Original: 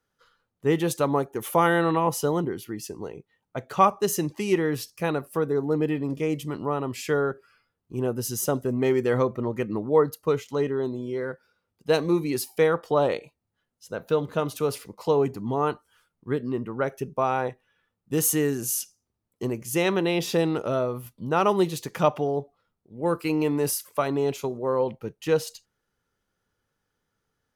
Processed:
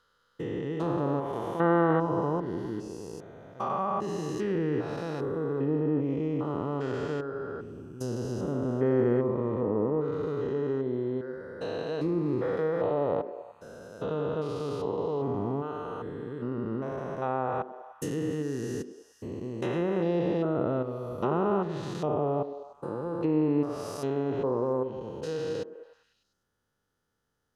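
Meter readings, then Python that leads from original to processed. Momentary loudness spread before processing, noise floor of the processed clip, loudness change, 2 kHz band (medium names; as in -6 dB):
11 LU, -74 dBFS, -4.5 dB, -9.0 dB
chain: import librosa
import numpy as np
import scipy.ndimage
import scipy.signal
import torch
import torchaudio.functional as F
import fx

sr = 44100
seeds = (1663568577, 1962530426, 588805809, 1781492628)

p1 = fx.spec_steps(x, sr, hold_ms=400)
p2 = fx.peak_eq(p1, sr, hz=2300.0, db=-8.0, octaves=0.3)
p3 = fx.env_lowpass_down(p2, sr, base_hz=1700.0, full_db=-24.0)
y = p3 + fx.echo_stepped(p3, sr, ms=100, hz=290.0, octaves=0.7, feedback_pct=70, wet_db=-9.5, dry=0)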